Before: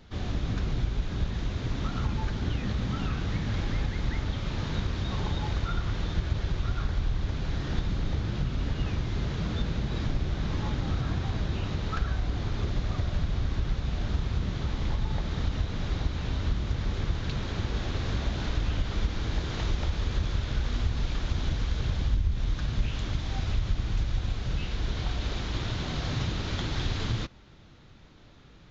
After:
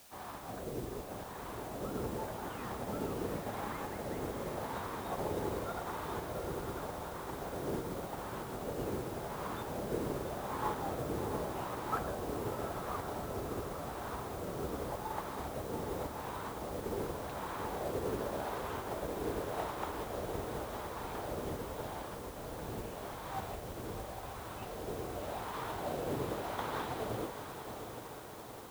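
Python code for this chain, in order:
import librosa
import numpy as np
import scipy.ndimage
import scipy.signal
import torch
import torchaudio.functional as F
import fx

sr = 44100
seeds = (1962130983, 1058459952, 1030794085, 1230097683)

p1 = fx.wah_lfo(x, sr, hz=0.87, low_hz=430.0, high_hz=1000.0, q=2.8)
p2 = fx.echo_diffused(p1, sr, ms=735, feedback_pct=73, wet_db=-6)
p3 = fx.quant_dither(p2, sr, seeds[0], bits=8, dither='triangular')
p4 = p2 + (p3 * 10.0 ** (-9.5 / 20.0))
p5 = fx.upward_expand(p4, sr, threshold_db=-52.0, expansion=1.5)
y = p5 * 10.0 ** (6.5 / 20.0)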